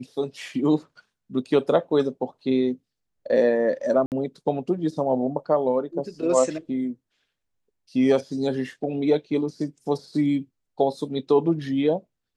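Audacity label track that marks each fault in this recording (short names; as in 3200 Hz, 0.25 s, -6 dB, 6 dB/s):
4.060000	4.120000	gap 58 ms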